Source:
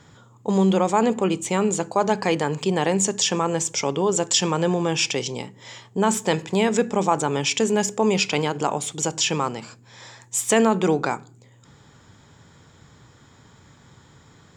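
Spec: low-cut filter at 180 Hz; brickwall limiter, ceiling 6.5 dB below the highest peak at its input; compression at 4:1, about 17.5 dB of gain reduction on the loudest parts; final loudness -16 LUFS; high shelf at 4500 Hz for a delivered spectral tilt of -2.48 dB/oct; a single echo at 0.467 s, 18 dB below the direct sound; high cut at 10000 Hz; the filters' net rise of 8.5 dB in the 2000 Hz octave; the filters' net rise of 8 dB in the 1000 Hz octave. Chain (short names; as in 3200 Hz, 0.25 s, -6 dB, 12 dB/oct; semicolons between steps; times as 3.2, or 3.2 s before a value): HPF 180 Hz; LPF 10000 Hz; bell 1000 Hz +8 dB; bell 2000 Hz +7.5 dB; high shelf 4500 Hz +5.5 dB; compressor 4:1, threshold -30 dBFS; limiter -20.5 dBFS; echo 0.467 s -18 dB; gain +17 dB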